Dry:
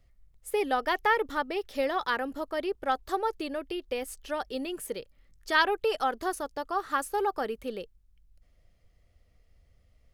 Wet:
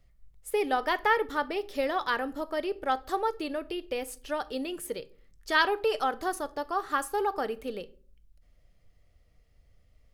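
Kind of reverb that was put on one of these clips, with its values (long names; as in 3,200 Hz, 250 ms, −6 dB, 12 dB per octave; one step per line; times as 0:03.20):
rectangular room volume 410 cubic metres, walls furnished, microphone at 0.41 metres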